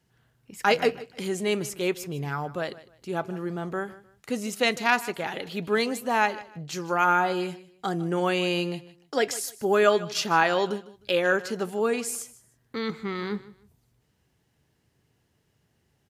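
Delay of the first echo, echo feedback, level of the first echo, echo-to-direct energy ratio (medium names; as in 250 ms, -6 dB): 153 ms, 26%, -18.0 dB, -17.5 dB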